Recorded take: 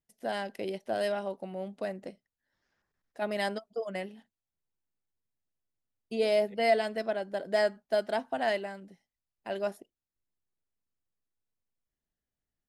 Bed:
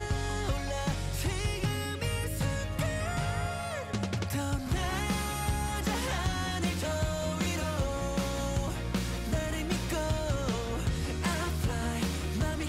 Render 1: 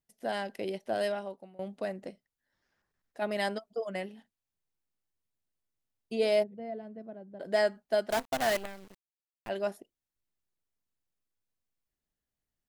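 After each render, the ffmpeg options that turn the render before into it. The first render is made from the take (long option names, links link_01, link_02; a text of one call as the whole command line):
ffmpeg -i in.wav -filter_complex "[0:a]asplit=3[link_01][link_02][link_03];[link_01]afade=type=out:start_time=6.42:duration=0.02[link_04];[link_02]bandpass=frequency=120:width_type=q:width=1.1,afade=type=in:start_time=6.42:duration=0.02,afade=type=out:start_time=7.39:duration=0.02[link_05];[link_03]afade=type=in:start_time=7.39:duration=0.02[link_06];[link_04][link_05][link_06]amix=inputs=3:normalize=0,asettb=1/sr,asplit=3[link_07][link_08][link_09];[link_07]atrim=end=8.104[link_10];[link_08]atrim=start=8.1:end=9.49,asetpts=PTS-STARTPTS,afade=type=in:duration=0.004:curve=qsin,afade=type=out:start_time=1.386:duration=0.004:curve=qsin,acrusher=bits=6:dc=4:mix=0:aa=0.000001[link_11];[link_09]atrim=start=9.486[link_12];[link_10][link_11]acrossfade=duration=0.004:curve1=hsin:curve2=qsin[link_13];[link_13][link_12]acrossfade=duration=0.004:curve1=qsin:curve2=hsin,asplit=2[link_14][link_15];[link_14]atrim=end=1.59,asetpts=PTS-STARTPTS,afade=type=out:start_time=1.02:duration=0.57:silence=0.0891251[link_16];[link_15]atrim=start=1.59,asetpts=PTS-STARTPTS,afade=type=in:duration=0.004:curve=hsin:silence=0.0891251[link_17];[link_16][link_17]concat=n=2:v=0:a=1" out.wav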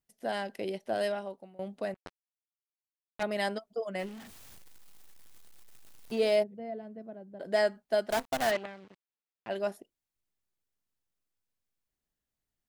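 ffmpeg -i in.wav -filter_complex "[0:a]asettb=1/sr,asplit=3[link_01][link_02][link_03];[link_01]atrim=end=1.944[link_04];[link_02]atrim=start=1.94:end=3.23,asetpts=PTS-STARTPTS,afade=type=in:duration=0.004:curve=qsin,afade=type=out:start_time=1.286:duration=0.004:curve=qsin,acrusher=bits=4:mix=0:aa=0.5[link_05];[link_03]atrim=start=3.226[link_06];[link_04][link_05]acrossfade=duration=0.004:curve1=hsin:curve2=qsin[link_07];[link_07][link_06]acrossfade=duration=0.004:curve1=qsin:curve2=hsin,asettb=1/sr,asplit=3[link_08][link_09][link_10];[link_08]atrim=end=3.994[link_11];[link_09]atrim=start=3.99:end=6.36,asetpts=PTS-STARTPTS,afade=type=in:duration=0.004:curve=qsin,afade=type=out:start_time=2.366:duration=0.004:curve=qsin,aeval=exprs='val(0)+0.5*0.00668*sgn(val(0))':channel_layout=same[link_12];[link_10]atrim=start=6.356[link_13];[link_11][link_12]acrossfade=duration=0.004:curve1=hsin:curve2=qsin[link_14];[link_14][link_13]acrossfade=duration=0.004:curve1=qsin:curve2=hsin,asplit=3[link_15][link_16][link_17];[link_15]afade=type=out:start_time=8.5:duration=0.02[link_18];[link_16]highpass=120,lowpass=3600,afade=type=in:start_time=8.5:duration=0.02,afade=type=out:start_time=9.49:duration=0.02[link_19];[link_17]afade=type=in:start_time=9.49:duration=0.02[link_20];[link_18][link_19][link_20]amix=inputs=3:normalize=0" out.wav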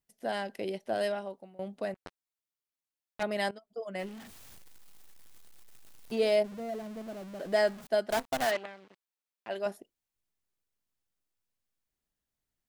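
ffmpeg -i in.wav -filter_complex "[0:a]asettb=1/sr,asplit=3[link_01][link_02][link_03];[link_01]atrim=end=6.444[link_04];[link_02]atrim=start=6.44:end=7.87,asetpts=PTS-STARTPTS,afade=type=in:duration=0.004:curve=qsin,afade=type=out:start_time=1.426:duration=0.004:curve=qsin,aeval=exprs='val(0)+0.5*0.00708*sgn(val(0))':channel_layout=same[link_05];[link_03]atrim=start=7.866[link_06];[link_04][link_05]acrossfade=duration=0.004:curve1=hsin:curve2=qsin[link_07];[link_07][link_06]acrossfade=duration=0.004:curve1=qsin:curve2=hsin,asettb=1/sr,asplit=3[link_08][link_09][link_10];[link_08]atrim=end=8.454[link_11];[link_09]atrim=start=8.45:end=9.66,asetpts=PTS-STARTPTS,afade=type=in:duration=0.004:curve=qsin,afade=type=out:start_time=1.206:duration=0.004:curve=qsin,highpass=frequency=340:poles=1[link_12];[link_10]atrim=start=9.656[link_13];[link_11][link_12]acrossfade=duration=0.004:curve1=hsin:curve2=qsin[link_14];[link_14][link_13]acrossfade=duration=0.004:curve1=qsin:curve2=hsin,asplit=2[link_15][link_16];[link_15]atrim=end=3.51,asetpts=PTS-STARTPTS,afade=type=out:start_time=3.506:duration=0.004:curve=hsin:silence=0.133352[link_17];[link_16]atrim=start=3.51,asetpts=PTS-STARTPTS,afade=type=in:duration=0.76:curve=qsin:silence=0.133352[link_18];[link_17][link_18]concat=n=2:v=0:a=1" out.wav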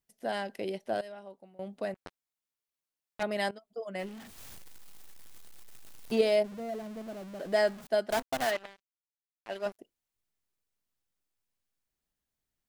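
ffmpeg -i in.wav -filter_complex "[0:a]asettb=1/sr,asplit=3[link_01][link_02][link_03];[link_01]atrim=end=8.224[link_04];[link_02]atrim=start=8.22:end=9.79,asetpts=PTS-STARTPTS,afade=type=in:duration=0.004:curve=qsin,afade=type=out:start_time=1.566:duration=0.004:curve=qsin,aeval=exprs='sgn(val(0))*max(abs(val(0))-0.00531,0)':channel_layout=same[link_05];[link_03]atrim=start=9.786[link_06];[link_04][link_05]acrossfade=duration=0.004:curve1=hsin:curve2=qsin[link_07];[link_07][link_06]acrossfade=duration=0.004:curve1=qsin:curve2=hsin,asplit=4[link_08][link_09][link_10][link_11];[link_08]atrim=end=1.01,asetpts=PTS-STARTPTS,afade=type=out:start_time=1.006:duration=0.004:curve=hsin:silence=0.125893[link_12];[link_09]atrim=start=1.01:end=4.382,asetpts=PTS-STARTPTS,afade=type=in:duration=0.79:silence=0.125893[link_13];[link_10]atrim=start=4.378:end=6.212,asetpts=PTS-STARTPTS,volume=4.5dB[link_14];[link_11]atrim=start=6.208[link_15];[link_12][link_13]concat=n=2:v=0:a=1[link_16];[link_16][link_14]acrossfade=duration=0.004:curve1=hsin:curve2=hsin[link_17];[link_17][link_15]acrossfade=duration=0.004:curve1=hsin:curve2=hsin" out.wav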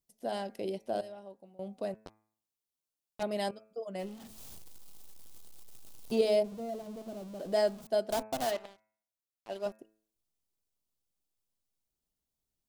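ffmpeg -i in.wav -af "equalizer=frequency=1800:width=1.2:gain=-10.5,bandreject=frequency=108.5:width_type=h:width=4,bandreject=frequency=217:width_type=h:width=4,bandreject=frequency=325.5:width_type=h:width=4,bandreject=frequency=434:width_type=h:width=4,bandreject=frequency=542.5:width_type=h:width=4,bandreject=frequency=651:width_type=h:width=4,bandreject=frequency=759.5:width_type=h:width=4,bandreject=frequency=868:width_type=h:width=4,bandreject=frequency=976.5:width_type=h:width=4,bandreject=frequency=1085:width_type=h:width=4,bandreject=frequency=1193.5:width_type=h:width=4,bandreject=frequency=1302:width_type=h:width=4,bandreject=frequency=1410.5:width_type=h:width=4,bandreject=frequency=1519:width_type=h:width=4,bandreject=frequency=1627.5:width_type=h:width=4,bandreject=frequency=1736:width_type=h:width=4,bandreject=frequency=1844.5:width_type=h:width=4,bandreject=frequency=1953:width_type=h:width=4,bandreject=frequency=2061.5:width_type=h:width=4,bandreject=frequency=2170:width_type=h:width=4,bandreject=frequency=2278.5:width_type=h:width=4,bandreject=frequency=2387:width_type=h:width=4,bandreject=frequency=2495.5:width_type=h:width=4,bandreject=frequency=2604:width_type=h:width=4" out.wav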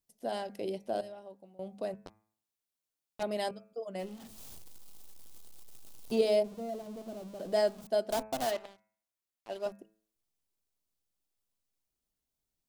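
ffmpeg -i in.wav -af "bandreject=frequency=50:width_type=h:width=6,bandreject=frequency=100:width_type=h:width=6,bandreject=frequency=150:width_type=h:width=6,bandreject=frequency=200:width_type=h:width=6" out.wav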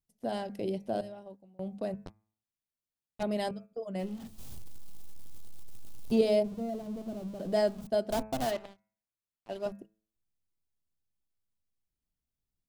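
ffmpeg -i in.wav -af "agate=range=-7dB:threshold=-50dB:ratio=16:detection=peak,bass=frequency=250:gain=11,treble=frequency=4000:gain=-2" out.wav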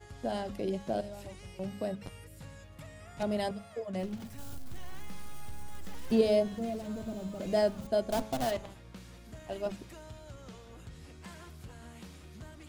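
ffmpeg -i in.wav -i bed.wav -filter_complex "[1:a]volume=-17.5dB[link_01];[0:a][link_01]amix=inputs=2:normalize=0" out.wav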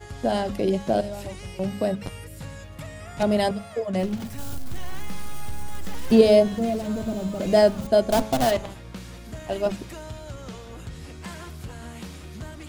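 ffmpeg -i in.wav -af "volume=10.5dB" out.wav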